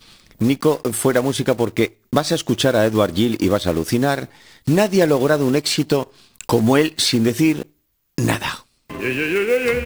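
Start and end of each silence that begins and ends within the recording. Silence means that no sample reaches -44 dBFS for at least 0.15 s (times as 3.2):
1.93–2.13
7.7–8.18
8.62–8.9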